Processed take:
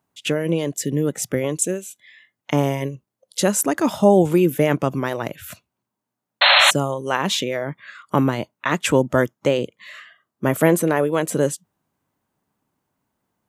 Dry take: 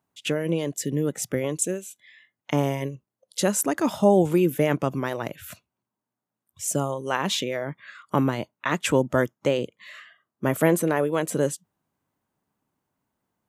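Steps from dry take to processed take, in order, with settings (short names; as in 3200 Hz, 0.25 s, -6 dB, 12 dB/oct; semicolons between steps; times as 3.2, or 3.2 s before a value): painted sound noise, 6.41–6.71, 530–4300 Hz -17 dBFS; gain +4 dB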